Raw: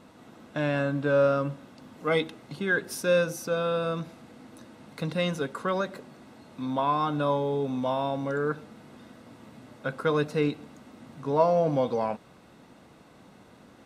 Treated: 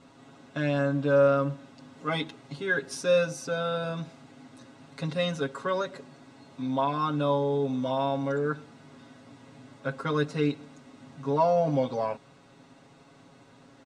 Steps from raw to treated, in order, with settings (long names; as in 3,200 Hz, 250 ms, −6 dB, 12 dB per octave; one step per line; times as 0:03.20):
low-pass filter 8,300 Hz 24 dB per octave
high-shelf EQ 5,100 Hz +4.5 dB
comb filter 7.3 ms, depth 100%
level −4.5 dB